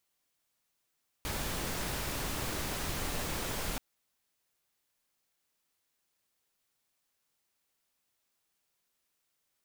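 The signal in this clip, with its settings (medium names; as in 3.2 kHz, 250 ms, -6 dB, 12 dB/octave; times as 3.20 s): noise pink, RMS -35.5 dBFS 2.53 s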